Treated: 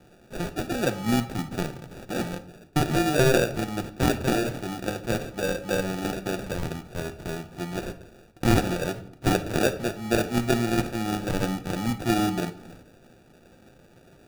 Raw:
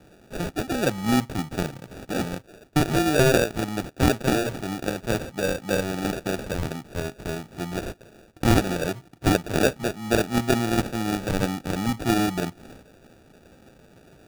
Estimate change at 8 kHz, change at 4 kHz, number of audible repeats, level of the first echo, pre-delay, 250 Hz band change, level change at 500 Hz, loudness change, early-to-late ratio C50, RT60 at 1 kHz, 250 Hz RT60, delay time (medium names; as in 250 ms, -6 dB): -2.0 dB, -2.0 dB, no echo, no echo, 6 ms, -2.0 dB, -1.5 dB, -1.5 dB, 13.0 dB, 0.80 s, 1.0 s, no echo